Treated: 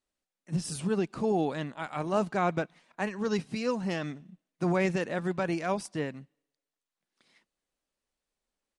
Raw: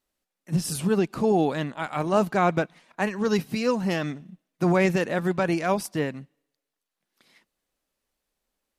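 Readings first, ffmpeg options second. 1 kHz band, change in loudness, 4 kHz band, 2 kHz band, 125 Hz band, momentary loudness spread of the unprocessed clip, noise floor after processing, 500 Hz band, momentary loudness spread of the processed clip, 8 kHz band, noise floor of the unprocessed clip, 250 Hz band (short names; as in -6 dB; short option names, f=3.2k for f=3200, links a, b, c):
-6.0 dB, -6.0 dB, -6.0 dB, -6.0 dB, -6.0 dB, 8 LU, under -85 dBFS, -6.0 dB, 8 LU, -6.5 dB, under -85 dBFS, -6.0 dB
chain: -af "aresample=22050,aresample=44100,volume=-6dB"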